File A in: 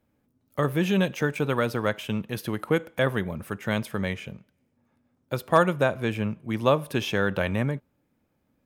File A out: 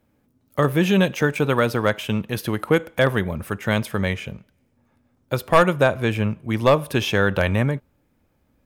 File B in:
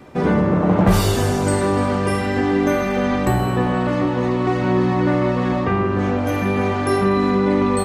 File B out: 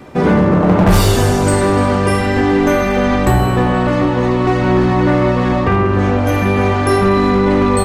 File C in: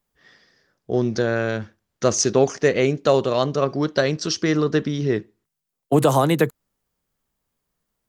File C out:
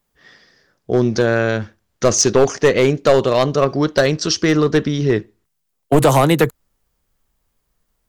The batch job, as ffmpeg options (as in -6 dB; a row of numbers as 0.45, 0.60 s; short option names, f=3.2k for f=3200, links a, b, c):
-af "asoftclip=type=hard:threshold=-11.5dB,asubboost=boost=2.5:cutoff=90,volume=6dB"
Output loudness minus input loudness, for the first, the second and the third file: +5.5, +5.0, +5.0 LU